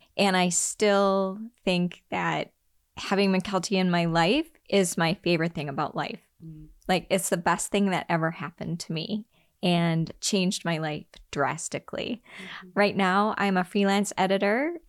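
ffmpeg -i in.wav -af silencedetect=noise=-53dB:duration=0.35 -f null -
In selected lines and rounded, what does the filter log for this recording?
silence_start: 2.50
silence_end: 2.97 | silence_duration: 0.47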